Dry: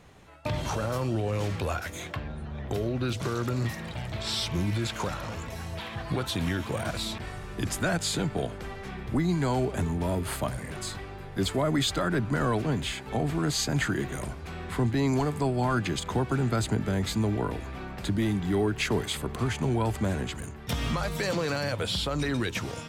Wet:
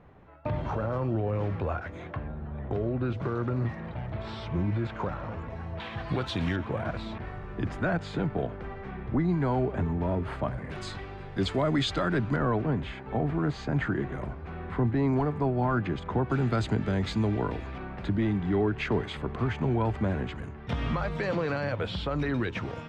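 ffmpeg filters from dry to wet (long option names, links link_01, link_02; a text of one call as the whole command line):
ffmpeg -i in.wav -af "asetnsamples=nb_out_samples=441:pad=0,asendcmd='5.8 lowpass f 3700;6.56 lowpass f 1800;10.7 lowpass f 4100;12.36 lowpass f 1700;16.3 lowpass f 3800;17.78 lowpass f 2300',lowpass=1500" out.wav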